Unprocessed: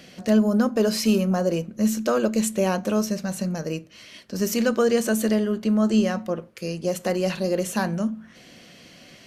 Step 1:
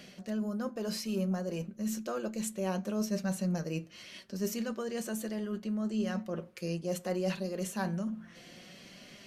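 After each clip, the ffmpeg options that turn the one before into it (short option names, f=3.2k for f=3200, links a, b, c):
-af "areverse,acompressor=threshold=-28dB:ratio=6,areverse,flanger=delay=4.8:depth=1.1:regen=53:speed=0.66:shape=triangular"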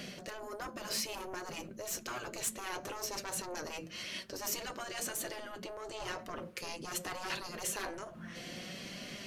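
-af "asoftclip=type=tanh:threshold=-32dB,afftfilt=real='re*lt(hypot(re,im),0.0398)':imag='im*lt(hypot(re,im),0.0398)':win_size=1024:overlap=0.75,volume=7dB"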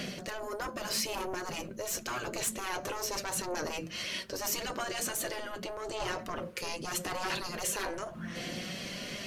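-filter_complex "[0:a]asplit=2[a][b];[b]alimiter=level_in=8.5dB:limit=-24dB:level=0:latency=1:release=22,volume=-8.5dB,volume=-1.5dB[c];[a][c]amix=inputs=2:normalize=0,aphaser=in_gain=1:out_gain=1:delay=2.1:decay=0.21:speed=0.83:type=sinusoidal"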